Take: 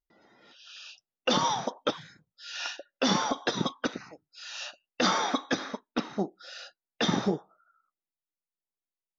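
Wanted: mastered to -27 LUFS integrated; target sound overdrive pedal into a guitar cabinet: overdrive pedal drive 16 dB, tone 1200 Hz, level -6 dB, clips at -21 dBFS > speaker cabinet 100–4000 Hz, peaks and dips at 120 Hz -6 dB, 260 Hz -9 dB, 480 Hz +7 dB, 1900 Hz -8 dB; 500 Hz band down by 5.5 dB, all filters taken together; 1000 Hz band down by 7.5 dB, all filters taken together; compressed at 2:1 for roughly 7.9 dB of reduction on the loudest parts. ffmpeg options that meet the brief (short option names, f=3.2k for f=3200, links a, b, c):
-filter_complex "[0:a]equalizer=f=500:t=o:g=-9,equalizer=f=1k:t=o:g=-6.5,acompressor=threshold=-38dB:ratio=2,asplit=2[a][b];[b]highpass=f=720:p=1,volume=16dB,asoftclip=type=tanh:threshold=-21dB[c];[a][c]amix=inputs=2:normalize=0,lowpass=f=1.2k:p=1,volume=-6dB,highpass=100,equalizer=f=120:t=q:w=4:g=-6,equalizer=f=260:t=q:w=4:g=-9,equalizer=f=480:t=q:w=4:g=7,equalizer=f=1.9k:t=q:w=4:g=-8,lowpass=f=4k:w=0.5412,lowpass=f=4k:w=1.3066,volume=14dB"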